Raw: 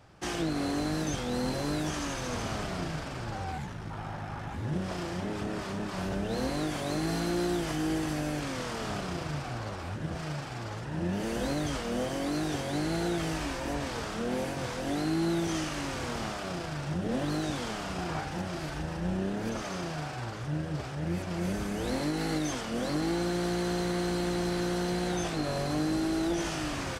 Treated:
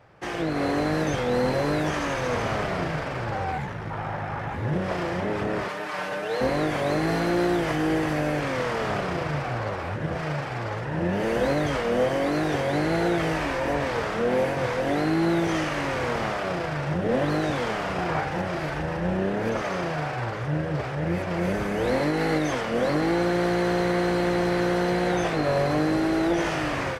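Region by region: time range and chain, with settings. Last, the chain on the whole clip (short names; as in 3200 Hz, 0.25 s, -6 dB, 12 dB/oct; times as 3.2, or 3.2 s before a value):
5.68–6.41 delta modulation 64 kbps, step -49 dBFS + HPF 1000 Hz 6 dB/oct + comb 6.6 ms, depth 84%
whole clip: graphic EQ 125/500/1000/2000/8000 Hz +6/+10/+5/+9/-4 dB; AGC gain up to 5.5 dB; gain -5 dB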